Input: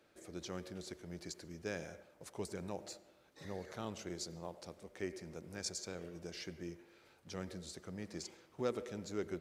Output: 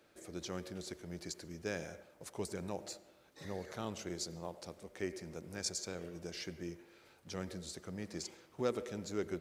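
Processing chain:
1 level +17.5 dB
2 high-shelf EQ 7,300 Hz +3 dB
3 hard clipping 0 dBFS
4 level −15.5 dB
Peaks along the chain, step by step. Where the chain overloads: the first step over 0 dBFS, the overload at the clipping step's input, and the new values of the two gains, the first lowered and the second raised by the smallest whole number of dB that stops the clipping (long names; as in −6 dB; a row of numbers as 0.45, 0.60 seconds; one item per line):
−4.5, −4.5, −4.5, −20.0 dBFS
no step passes full scale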